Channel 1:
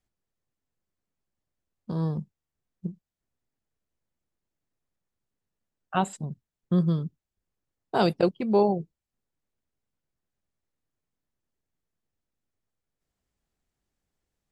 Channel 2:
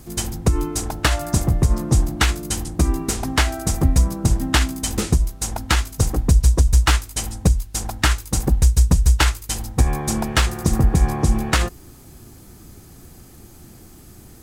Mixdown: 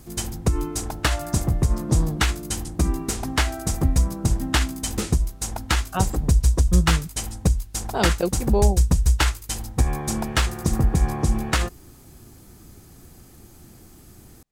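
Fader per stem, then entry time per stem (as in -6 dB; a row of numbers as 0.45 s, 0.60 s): -1.0 dB, -3.5 dB; 0.00 s, 0.00 s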